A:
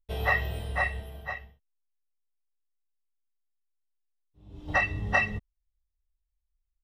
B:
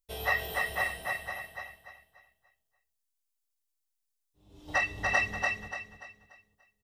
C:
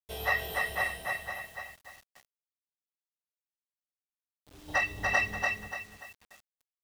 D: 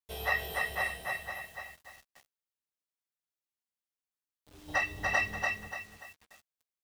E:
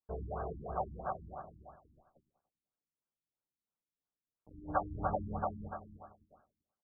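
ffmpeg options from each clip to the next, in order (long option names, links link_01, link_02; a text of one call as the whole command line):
ffmpeg -i in.wav -filter_complex "[0:a]bass=frequency=250:gain=-8,treble=frequency=4000:gain=11,asplit=2[link_01][link_02];[link_02]aecho=0:1:291|582|873|1164|1455:0.708|0.248|0.0867|0.0304|0.0106[link_03];[link_01][link_03]amix=inputs=2:normalize=0,volume=-3.5dB" out.wav
ffmpeg -i in.wav -af "acrusher=bits=8:mix=0:aa=0.000001" out.wav
ffmpeg -i in.wav -filter_complex "[0:a]asplit=2[link_01][link_02];[link_02]adelay=13,volume=-11dB[link_03];[link_01][link_03]amix=inputs=2:normalize=0,volume=-2dB" out.wav
ffmpeg -i in.wav -af "equalizer=frequency=180:width=1.5:gain=3.5,aecho=1:1:96|192|288|384|480:0.237|0.109|0.0502|0.0231|0.0106,afftfilt=real='re*lt(b*sr/1024,330*pow(1700/330,0.5+0.5*sin(2*PI*3*pts/sr)))':imag='im*lt(b*sr/1024,330*pow(1700/330,0.5+0.5*sin(2*PI*3*pts/sr)))':win_size=1024:overlap=0.75,volume=2.5dB" out.wav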